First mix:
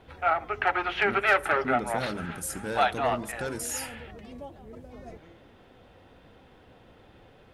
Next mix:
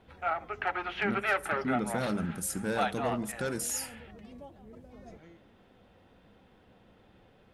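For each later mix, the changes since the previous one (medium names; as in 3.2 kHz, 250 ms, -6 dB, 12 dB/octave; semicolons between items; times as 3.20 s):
background -6.5 dB; master: add peaking EQ 200 Hz +7 dB 0.33 oct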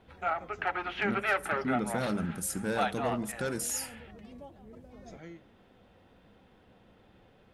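first voice +8.5 dB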